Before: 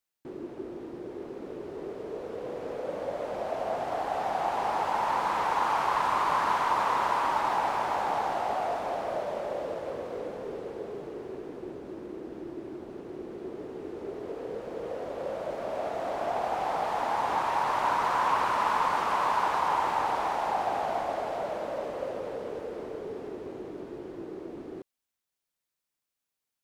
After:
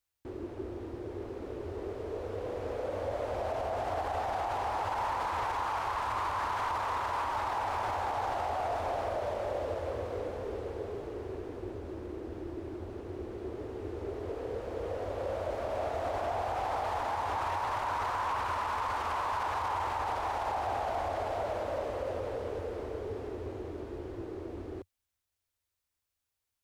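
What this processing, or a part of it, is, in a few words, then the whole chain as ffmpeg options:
car stereo with a boomy subwoofer: -af "lowshelf=f=120:t=q:w=3:g=9.5,alimiter=level_in=1dB:limit=-24dB:level=0:latency=1:release=35,volume=-1dB"

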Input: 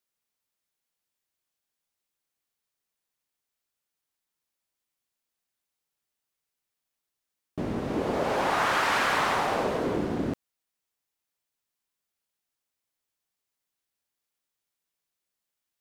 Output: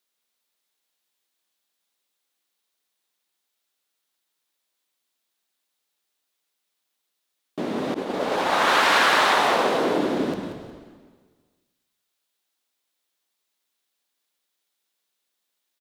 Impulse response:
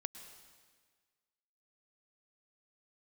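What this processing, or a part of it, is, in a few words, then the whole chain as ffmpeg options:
PA in a hall: -filter_complex "[0:a]highpass=160,equalizer=f=3.7k:t=o:w=0.57:g=5.5,aecho=1:1:185:0.266[a];[1:a]atrim=start_sample=2205[b];[a][b]afir=irnorm=-1:irlink=0,highpass=200,asplit=4[c][d][e][f];[d]adelay=178,afreqshift=-72,volume=-13dB[g];[e]adelay=356,afreqshift=-144,volume=-22.9dB[h];[f]adelay=534,afreqshift=-216,volume=-32.8dB[i];[c][g][h][i]amix=inputs=4:normalize=0,asettb=1/sr,asplit=3[j][k][l];[j]atrim=end=7.944[m];[k]atrim=start=7.94:end=8.68,asetpts=PTS-STARTPTS,afade=t=in:d=0.004:c=qsin,afade=t=out:st=0.736:d=0.004:c=qsin,agate=range=-33dB:threshold=-24dB:ratio=3:detection=peak[n];[l]atrim=start=8.676[o];[m][n]acrossfade=d=0.004:c1=hsin:c2=qsin[p];[p][o]acrossfade=d=0.004:c1=qsin:c2=hsin,volume=8dB"

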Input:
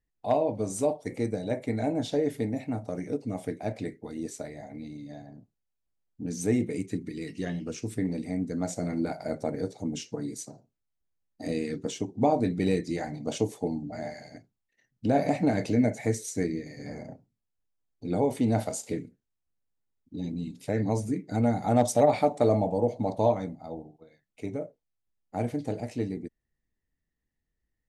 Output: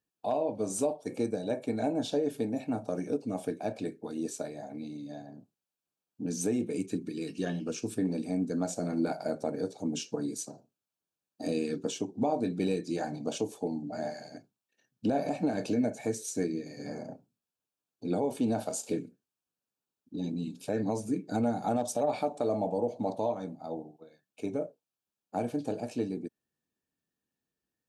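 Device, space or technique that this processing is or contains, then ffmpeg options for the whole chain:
PA system with an anti-feedback notch: -af "highpass=180,asuperstop=centerf=2000:order=4:qfactor=4.4,alimiter=limit=-21dB:level=0:latency=1:release=354,volume=1.5dB"

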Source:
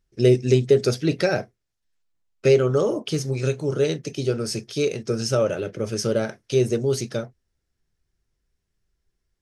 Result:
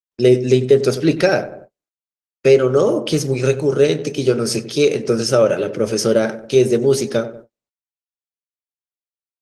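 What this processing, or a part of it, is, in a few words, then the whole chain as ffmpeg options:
video call: -filter_complex "[0:a]highpass=170,asplit=2[a][b];[b]adelay=95,lowpass=f=1.3k:p=1,volume=-12.5dB,asplit=2[c][d];[d]adelay=95,lowpass=f=1.3k:p=1,volume=0.51,asplit=2[e][f];[f]adelay=95,lowpass=f=1.3k:p=1,volume=0.51,asplit=2[g][h];[h]adelay=95,lowpass=f=1.3k:p=1,volume=0.51,asplit=2[i][j];[j]adelay=95,lowpass=f=1.3k:p=1,volume=0.51[k];[a][c][e][g][i][k]amix=inputs=6:normalize=0,dynaudnorm=f=120:g=3:m=9.5dB,agate=range=-44dB:threshold=-36dB:ratio=16:detection=peak" -ar 48000 -c:a libopus -b:a 24k

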